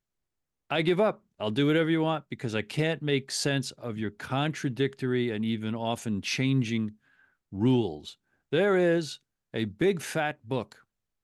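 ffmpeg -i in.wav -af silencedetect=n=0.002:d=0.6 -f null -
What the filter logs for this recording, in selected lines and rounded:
silence_start: 0.00
silence_end: 0.70 | silence_duration: 0.70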